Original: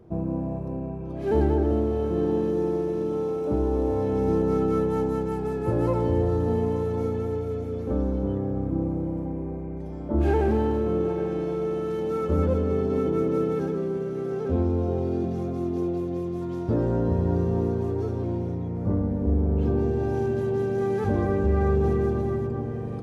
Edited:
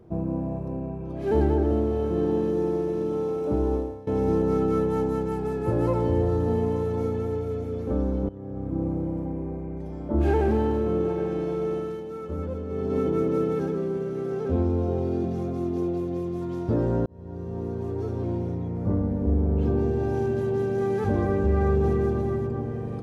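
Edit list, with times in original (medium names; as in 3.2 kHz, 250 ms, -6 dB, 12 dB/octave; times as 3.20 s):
3.74–4.07 s: fade out quadratic, to -19 dB
8.29–8.88 s: fade in, from -18.5 dB
11.74–12.98 s: dip -8.5 dB, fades 0.30 s
17.06–18.28 s: fade in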